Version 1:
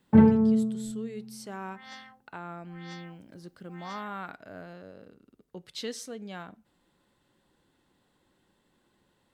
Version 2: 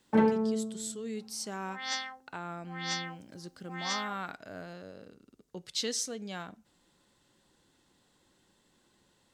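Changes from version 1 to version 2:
first sound: add HPF 350 Hz 12 dB/oct; second sound +9.0 dB; master: add bell 6300 Hz +10 dB 1.4 oct

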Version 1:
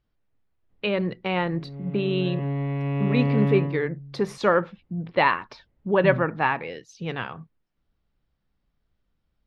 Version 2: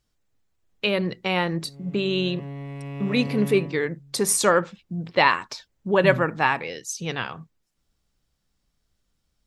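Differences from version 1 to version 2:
background -8.5 dB; master: remove air absorption 300 m

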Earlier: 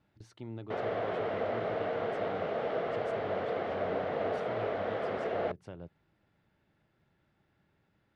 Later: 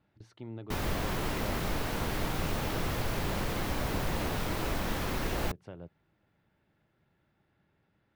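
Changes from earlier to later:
background: remove speaker cabinet 290–2600 Hz, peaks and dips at 300 Hz -7 dB, 460 Hz +9 dB, 660 Hz +10 dB, 960 Hz -7 dB, 1700 Hz -3 dB, 2500 Hz -8 dB; master: add bell 8200 Hz -5.5 dB 1.2 oct

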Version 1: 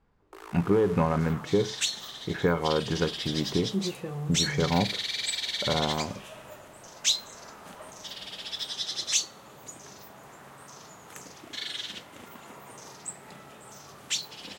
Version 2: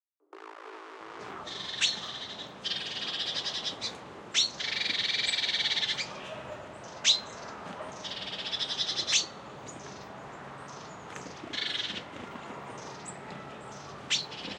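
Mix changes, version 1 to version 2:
speech: muted; second sound +5.5 dB; master: add air absorption 120 m

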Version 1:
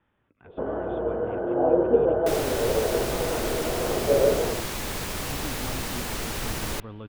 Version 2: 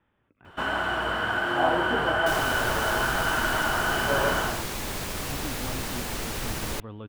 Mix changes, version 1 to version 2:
first sound: remove synth low-pass 480 Hz, resonance Q 4.9; second sound: send -9.0 dB

